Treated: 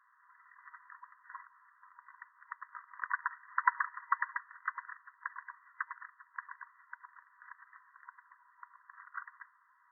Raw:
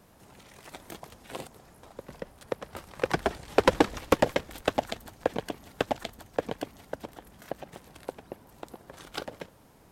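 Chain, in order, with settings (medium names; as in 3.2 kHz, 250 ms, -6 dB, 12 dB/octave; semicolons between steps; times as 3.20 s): FFT band-pass 950–2000 Hz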